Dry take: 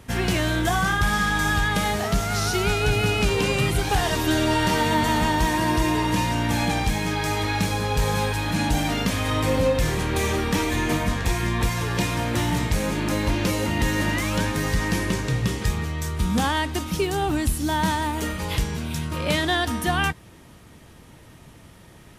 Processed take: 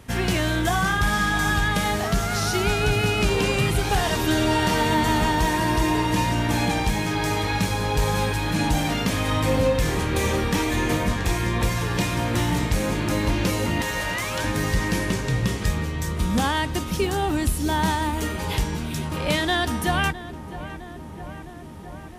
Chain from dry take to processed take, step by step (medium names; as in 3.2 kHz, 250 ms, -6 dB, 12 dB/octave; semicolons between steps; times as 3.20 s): 13.81–14.44 s: high-pass 490 Hz 24 dB/octave; filtered feedback delay 660 ms, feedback 81%, low-pass 1.9 kHz, level -14 dB